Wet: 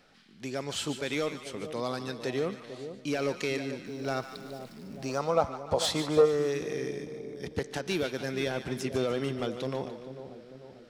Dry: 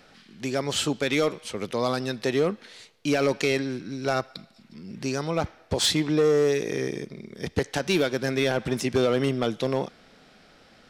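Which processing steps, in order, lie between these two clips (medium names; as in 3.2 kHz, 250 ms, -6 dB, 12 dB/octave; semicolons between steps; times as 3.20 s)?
3.86–5.18 s: jump at every zero crossing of -41.5 dBFS; two-band feedback delay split 860 Hz, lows 445 ms, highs 147 ms, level -10 dB; 5.09–6.25 s: time-frequency box 450–1400 Hz +10 dB; trim -7.5 dB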